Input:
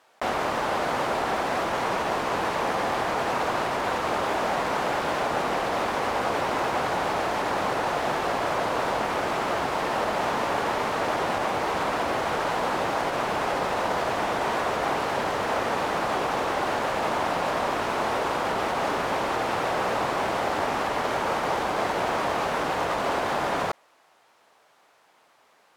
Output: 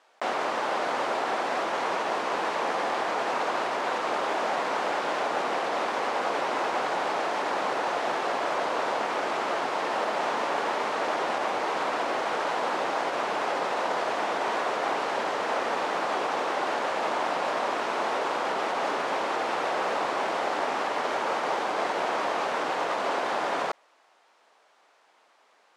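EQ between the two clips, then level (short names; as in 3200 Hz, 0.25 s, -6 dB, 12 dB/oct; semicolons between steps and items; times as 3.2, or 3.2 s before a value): BPF 290–8000 Hz; -1.5 dB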